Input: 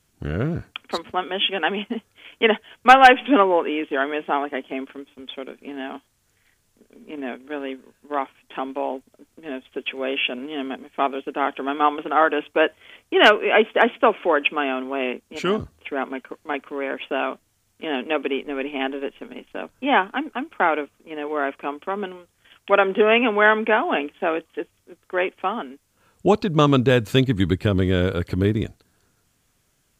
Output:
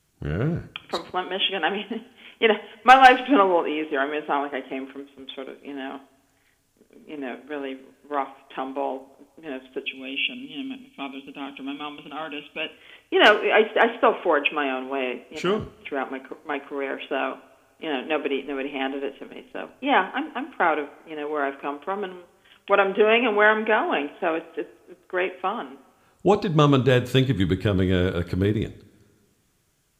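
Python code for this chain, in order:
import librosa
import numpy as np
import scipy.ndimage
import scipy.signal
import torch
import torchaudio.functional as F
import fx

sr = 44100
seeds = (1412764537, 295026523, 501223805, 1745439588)

y = fx.spec_box(x, sr, start_s=9.82, length_s=2.89, low_hz=280.0, high_hz=2200.0, gain_db=-15)
y = fx.rev_double_slope(y, sr, seeds[0], early_s=0.42, late_s=1.9, knee_db=-18, drr_db=11.0)
y = y * 10.0 ** (-2.0 / 20.0)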